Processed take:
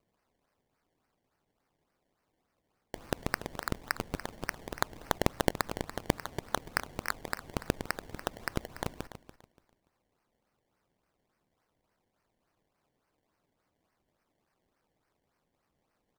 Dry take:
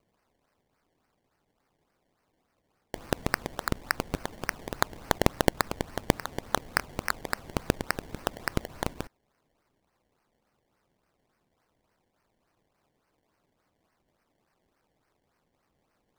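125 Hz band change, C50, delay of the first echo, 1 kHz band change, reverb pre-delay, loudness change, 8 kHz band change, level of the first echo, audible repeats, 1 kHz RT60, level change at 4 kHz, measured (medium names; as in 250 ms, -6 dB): -4.0 dB, no reverb, 288 ms, -4.0 dB, no reverb, -4.5 dB, -4.5 dB, -13.5 dB, 2, no reverb, -4.5 dB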